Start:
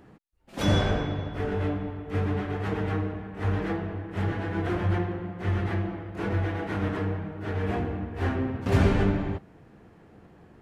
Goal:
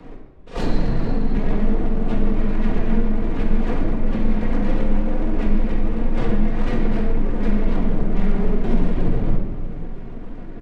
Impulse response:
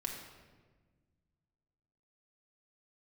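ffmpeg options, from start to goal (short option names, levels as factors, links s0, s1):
-filter_complex "[0:a]bass=f=250:g=14,treble=f=4000:g=-9,acompressor=threshold=0.0562:ratio=8,aresample=16000,aeval=exprs='abs(val(0))':c=same,aresample=44100,asplit=4[s0][s1][s2][s3];[s1]adelay=211,afreqshift=-76,volume=0.0794[s4];[s2]adelay=422,afreqshift=-152,volume=0.0367[s5];[s3]adelay=633,afreqshift=-228,volume=0.0168[s6];[s0][s4][s5][s6]amix=inputs=4:normalize=0,afreqshift=-21,acrossover=split=370|630[s7][s8][s9];[s9]aeval=exprs='clip(val(0),-1,0.00944)':c=same[s10];[s7][s8][s10]amix=inputs=3:normalize=0,asetrate=53981,aresample=44100,atempo=0.816958[s11];[1:a]atrim=start_sample=2205[s12];[s11][s12]afir=irnorm=-1:irlink=0,volume=2.66"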